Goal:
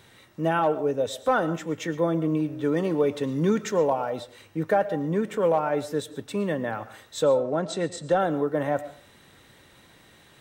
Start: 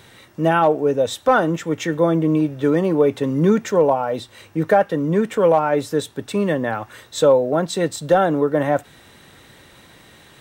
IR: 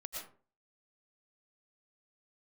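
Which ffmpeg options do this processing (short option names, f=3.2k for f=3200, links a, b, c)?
-filter_complex "[0:a]asettb=1/sr,asplit=3[a][b][c];[a]atrim=end=2.764[d];[b]atrim=start=2.76:end=4.1,asetpts=PTS-STARTPTS,afade=t=in:d=0.004:c=qsin,afade=t=out:st=1.336:d=0.004:c=qsin,equalizer=f=5k:w=0.44:g=5[e];[c]atrim=start=4.096[f];[d][e]acrossfade=d=0.004:c1=hsin:c2=qsin[g];[g][f]acrossfade=d=0.004:c1=qsin:c2=hsin,asettb=1/sr,asplit=3[h][i][j];[h]atrim=end=7.244[k];[i]atrim=start=7.24:end=8.2,asetpts=PTS-STARTPTS,afade=t=in:d=0.004:c=qsin,afade=t=out:st=0.956:d=0.004:c=qsin,lowpass=f=9k:w=0.5412,lowpass=f=9k:w=1.3066[l];[j]atrim=start=8.196[m];[k][l]acrossfade=d=0.004:c1=hsin:c2=qsin[n];[n][m]acrossfade=d=0.004:c1=qsin:c2=hsin,asplit=2[o][p];[1:a]atrim=start_sample=2205[q];[p][q]afir=irnorm=-1:irlink=0,volume=-10dB[r];[o][r]amix=inputs=2:normalize=0,volume=-8.5dB"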